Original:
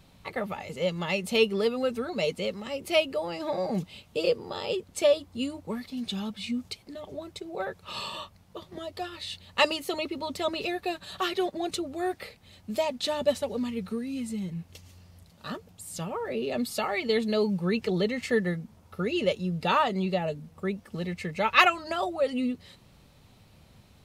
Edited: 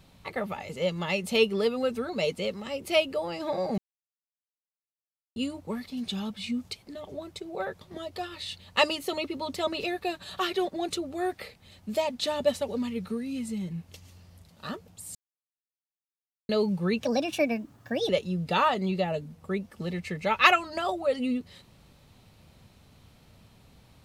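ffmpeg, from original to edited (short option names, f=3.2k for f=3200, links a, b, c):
-filter_complex "[0:a]asplit=8[a][b][c][d][e][f][g][h];[a]atrim=end=3.78,asetpts=PTS-STARTPTS,afade=t=out:st=3.776:d=0.004:c=hsin[i];[b]atrim=start=3.78:end=5.36,asetpts=PTS-STARTPTS,volume=0[j];[c]atrim=start=5.36:end=7.812,asetpts=PTS-STARTPTS,afade=t=in:d=0.004:c=hsin[k];[d]atrim=start=8.618:end=15.96,asetpts=PTS-STARTPTS,afade=t=out:st=7.338:d=0.004:c=hsin[l];[e]atrim=start=15.96:end=17.3,asetpts=PTS-STARTPTS,volume=0[m];[f]atrim=start=17.3:end=17.844,asetpts=PTS-STARTPTS,afade=t=in:d=0.004:c=hsin[n];[g]atrim=start=17.84:end=19.23,asetpts=PTS-STARTPTS,asetrate=57771,aresample=44100,atrim=end_sample=46793,asetpts=PTS-STARTPTS[o];[h]atrim=start=19.226[p];[i][j][k]concat=n=3:v=0:a=1[q];[l][m][n]concat=n=3:v=0:a=1[r];[q][r]acrossfade=d=0.004:c1=hsin:c2=hsin[s];[s][o]acrossfade=d=0.004:c1=hsin:c2=hsin[t];[t][p]acrossfade=d=0.004:c1=hsin:c2=hsin"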